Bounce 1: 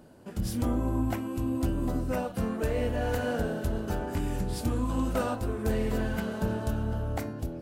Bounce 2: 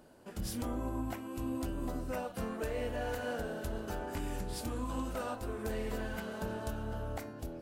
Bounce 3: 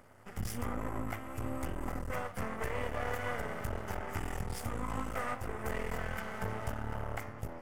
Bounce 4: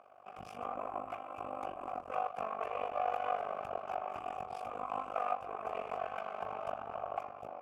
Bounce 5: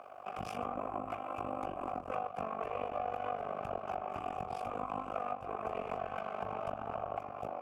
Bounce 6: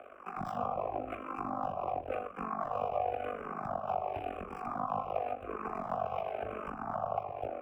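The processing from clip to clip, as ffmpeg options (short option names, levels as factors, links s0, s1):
-af "equalizer=f=120:w=0.46:g=-8,alimiter=level_in=1.12:limit=0.0631:level=0:latency=1:release=332,volume=0.891,volume=0.794"
-af "aeval=exprs='max(val(0),0)':c=same,equalizer=f=100:t=o:w=0.33:g=11,equalizer=f=315:t=o:w=0.33:g=-6,equalizer=f=800:t=o:w=0.33:g=3,equalizer=f=1250:t=o:w=0.33:g=7,equalizer=f=2000:t=o:w=0.33:g=9,equalizer=f=4000:t=o:w=0.33:g=-9,volume=1.41"
-filter_complex "[0:a]asplit=3[s0][s1][s2];[s0]bandpass=f=730:t=q:w=8,volume=1[s3];[s1]bandpass=f=1090:t=q:w=8,volume=0.501[s4];[s2]bandpass=f=2440:t=q:w=8,volume=0.355[s5];[s3][s4][s5]amix=inputs=3:normalize=0,tremolo=f=49:d=0.857,volume=5.31"
-filter_complex "[0:a]acrossover=split=330[s0][s1];[s1]acompressor=threshold=0.00501:ratio=5[s2];[s0][s2]amix=inputs=2:normalize=0,volume=2.82"
-filter_complex "[0:a]acrossover=split=210|450|3200[s0][s1][s2][s3];[s3]acrusher=samples=20:mix=1:aa=0.000001[s4];[s0][s1][s2][s4]amix=inputs=4:normalize=0,asplit=2[s5][s6];[s6]afreqshift=-0.93[s7];[s5][s7]amix=inputs=2:normalize=1,volume=1.88"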